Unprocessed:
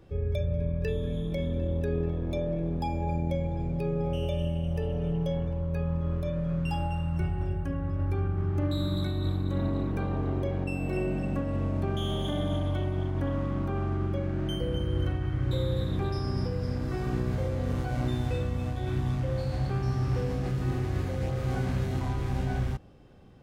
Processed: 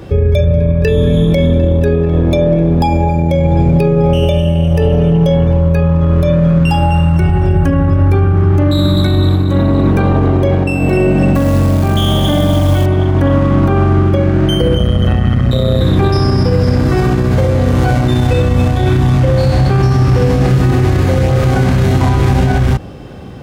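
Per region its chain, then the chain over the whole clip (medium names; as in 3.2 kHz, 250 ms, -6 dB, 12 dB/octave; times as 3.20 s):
11.35–12.86 s: bass shelf 68 Hz +2.5 dB + band-stop 410 Hz, Q 5.5 + companded quantiser 6-bit
14.78–15.81 s: comb 1.6 ms, depth 59% + AM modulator 120 Hz, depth 75%
whole clip: high-pass 51 Hz; loudness maximiser +27 dB; trim -2.5 dB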